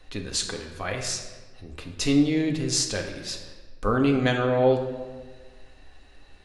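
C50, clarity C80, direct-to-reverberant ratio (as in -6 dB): 6.5 dB, 8.5 dB, 2.0 dB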